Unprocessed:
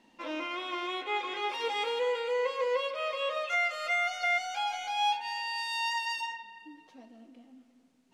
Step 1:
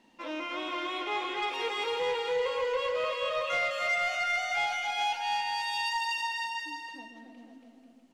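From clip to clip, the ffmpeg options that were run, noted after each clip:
ffmpeg -i in.wav -filter_complex "[0:a]asplit=2[link_01][link_02];[link_02]aecho=0:1:280|490|647.5|765.6|854.2:0.631|0.398|0.251|0.158|0.1[link_03];[link_01][link_03]amix=inputs=2:normalize=0,asoftclip=type=tanh:threshold=-22dB" out.wav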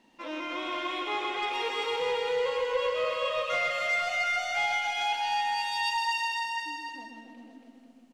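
ffmpeg -i in.wav -af "aecho=1:1:128:0.562" out.wav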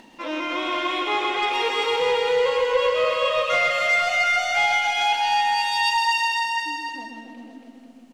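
ffmpeg -i in.wav -af "acompressor=mode=upward:threshold=-51dB:ratio=2.5,volume=8dB" out.wav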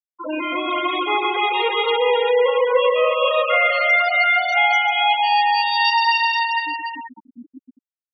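ffmpeg -i in.wav -af "highpass=80,afftfilt=real='re*gte(hypot(re,im),0.1)':imag='im*gte(hypot(re,im),0.1)':win_size=1024:overlap=0.75,volume=4dB" out.wav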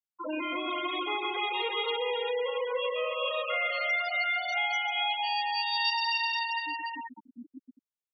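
ffmpeg -i in.wav -filter_complex "[0:a]acrossover=split=240|3000[link_01][link_02][link_03];[link_02]acompressor=threshold=-27dB:ratio=3[link_04];[link_01][link_04][link_03]amix=inputs=3:normalize=0,volume=-6dB" out.wav

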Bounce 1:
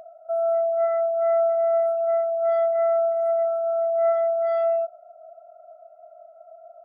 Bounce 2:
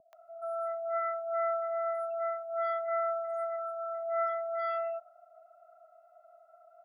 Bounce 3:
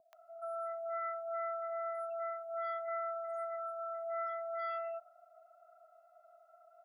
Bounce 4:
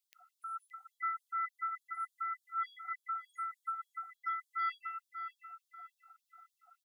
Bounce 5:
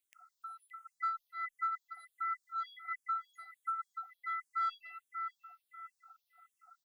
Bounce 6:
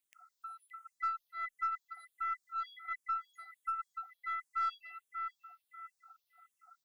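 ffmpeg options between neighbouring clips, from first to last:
ffmpeg -i in.wav -filter_complex "[0:a]lowshelf=frequency=800:width_type=q:width=1.5:gain=-10.5,acrossover=split=510[link_01][link_02];[link_02]adelay=130[link_03];[link_01][link_03]amix=inputs=2:normalize=0" out.wav
ffmpeg -i in.wav -af "lowshelf=frequency=500:gain=-11.5,acompressor=threshold=-37dB:ratio=2.5" out.wav
ffmpeg -i in.wav -filter_complex "[0:a]asplit=2[link_01][link_02];[link_02]adelay=570,lowpass=frequency=1200:poles=1,volume=-5dB,asplit=2[link_03][link_04];[link_04]adelay=570,lowpass=frequency=1200:poles=1,volume=0.55,asplit=2[link_05][link_06];[link_06]adelay=570,lowpass=frequency=1200:poles=1,volume=0.55,asplit=2[link_07][link_08];[link_08]adelay=570,lowpass=frequency=1200:poles=1,volume=0.55,asplit=2[link_09][link_10];[link_10]adelay=570,lowpass=frequency=1200:poles=1,volume=0.55,asplit=2[link_11][link_12];[link_12]adelay=570,lowpass=frequency=1200:poles=1,volume=0.55,asplit=2[link_13][link_14];[link_14]adelay=570,lowpass=frequency=1200:poles=1,volume=0.55[link_15];[link_01][link_03][link_05][link_07][link_09][link_11][link_13][link_15]amix=inputs=8:normalize=0,afftfilt=real='re*gte(b*sr/1024,720*pow(3300/720,0.5+0.5*sin(2*PI*3.4*pts/sr)))':imag='im*gte(b*sr/1024,720*pow(3300/720,0.5+0.5*sin(2*PI*3.4*pts/sr)))':win_size=1024:overlap=0.75,volume=6.5dB" out.wav
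ffmpeg -i in.wav -filter_complex "[0:a]asplit=2[link_01][link_02];[link_02]asoftclip=type=tanh:threshold=-35dB,volume=-10dB[link_03];[link_01][link_03]amix=inputs=2:normalize=0,asplit=2[link_04][link_05];[link_05]afreqshift=-1.4[link_06];[link_04][link_06]amix=inputs=2:normalize=1,volume=1dB" out.wav
ffmpeg -i in.wav -af "aeval=exprs='0.0473*(cos(1*acos(clip(val(0)/0.0473,-1,1)))-cos(1*PI/2))+0.00106*(cos(4*acos(clip(val(0)/0.0473,-1,1)))-cos(4*PI/2))':channel_layout=same" out.wav

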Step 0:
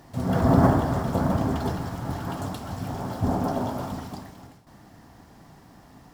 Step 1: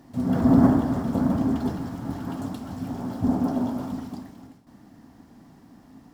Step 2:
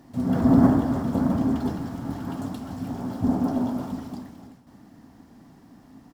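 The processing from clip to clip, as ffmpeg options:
ffmpeg -i in.wav -af "equalizer=frequency=250:width_type=o:width=0.79:gain=12,volume=-5.5dB" out.wav
ffmpeg -i in.wav -af "aecho=1:1:301|602|903:0.126|0.0516|0.0212" out.wav

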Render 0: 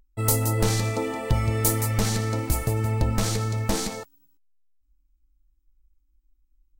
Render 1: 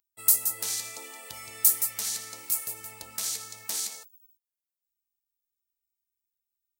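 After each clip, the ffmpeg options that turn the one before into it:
ffmpeg -i in.wav -af "aderivative,volume=1.5dB" out.wav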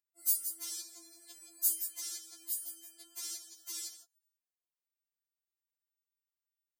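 ffmpeg -i in.wav -af "afftfilt=real='re*4*eq(mod(b,16),0)':imag='im*4*eq(mod(b,16),0)':win_size=2048:overlap=0.75,volume=-7.5dB" out.wav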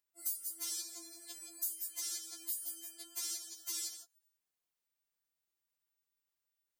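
ffmpeg -i in.wav -af "acompressor=threshold=-40dB:ratio=8,volume=4.5dB" out.wav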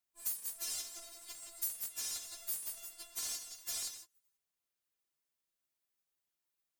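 ffmpeg -i in.wav -af "aeval=exprs='val(0)*sgn(sin(2*PI*340*n/s))':channel_layout=same" out.wav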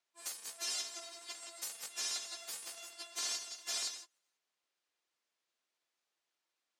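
ffmpeg -i in.wav -af "highpass=330,lowpass=5700,volume=7dB" out.wav

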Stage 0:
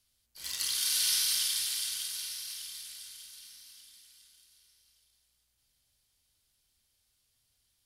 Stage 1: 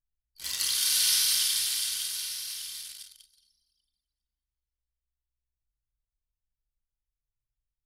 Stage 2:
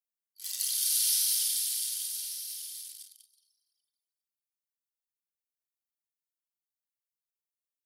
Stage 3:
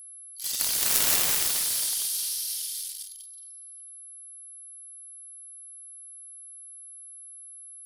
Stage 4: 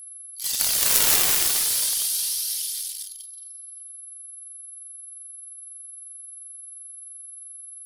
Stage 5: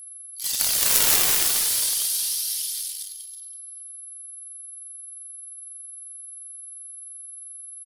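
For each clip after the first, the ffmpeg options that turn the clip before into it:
ffmpeg -i in.wav -af "anlmdn=0.0398,volume=4dB" out.wav
ffmpeg -i in.wav -af "aderivative,volume=-2.5dB" out.wav
ffmpeg -i in.wav -af "aeval=exprs='0.251*(cos(1*acos(clip(val(0)/0.251,-1,1)))-cos(1*PI/2))+0.01*(cos(2*acos(clip(val(0)/0.251,-1,1)))-cos(2*PI/2))+0.0794*(cos(7*acos(clip(val(0)/0.251,-1,1)))-cos(7*PI/2))':channel_layout=same,aeval=exprs='val(0)+0.00355*sin(2*PI*11000*n/s)':channel_layout=same,volume=6.5dB" out.wav
ffmpeg -i in.wav -af "aphaser=in_gain=1:out_gain=1:delay=2.9:decay=0.24:speed=0.36:type=triangular,volume=4dB" out.wav
ffmpeg -i in.wav -af "aecho=1:1:325:0.178" out.wav

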